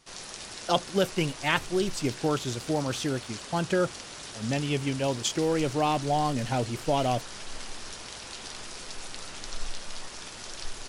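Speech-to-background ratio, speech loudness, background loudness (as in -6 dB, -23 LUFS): 11.0 dB, -28.5 LUFS, -39.5 LUFS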